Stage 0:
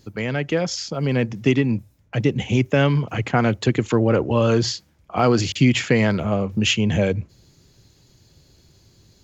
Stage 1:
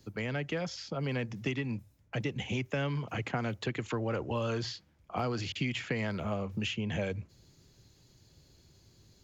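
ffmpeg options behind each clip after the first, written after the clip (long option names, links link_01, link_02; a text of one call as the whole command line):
ffmpeg -i in.wav -filter_complex "[0:a]acrossover=split=150|650|4200[link_01][link_02][link_03][link_04];[link_01]acompressor=threshold=-32dB:ratio=4[link_05];[link_02]acompressor=threshold=-30dB:ratio=4[link_06];[link_03]acompressor=threshold=-29dB:ratio=4[link_07];[link_04]acompressor=threshold=-47dB:ratio=4[link_08];[link_05][link_06][link_07][link_08]amix=inputs=4:normalize=0,volume=-7dB" out.wav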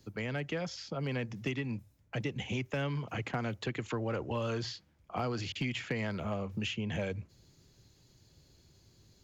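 ffmpeg -i in.wav -af "aeval=exprs='clip(val(0),-1,0.0562)':channel_layout=same,volume=-1.5dB" out.wav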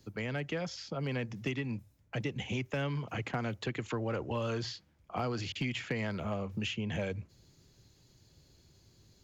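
ffmpeg -i in.wav -af anull out.wav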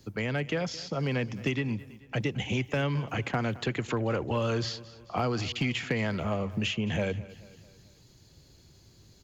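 ffmpeg -i in.wav -af "aecho=1:1:218|436|654|872:0.112|0.0561|0.0281|0.014,volume=5.5dB" out.wav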